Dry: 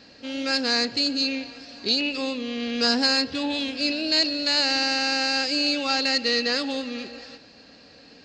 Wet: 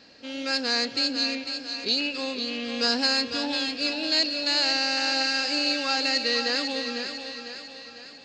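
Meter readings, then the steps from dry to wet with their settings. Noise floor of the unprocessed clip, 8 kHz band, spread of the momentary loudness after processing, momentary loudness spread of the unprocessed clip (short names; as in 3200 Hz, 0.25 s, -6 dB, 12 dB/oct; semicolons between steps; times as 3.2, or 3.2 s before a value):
-50 dBFS, -1.0 dB, 12 LU, 11 LU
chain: low shelf 220 Hz -6 dB; thinning echo 0.5 s, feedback 52%, high-pass 290 Hz, level -7.5 dB; gain -2 dB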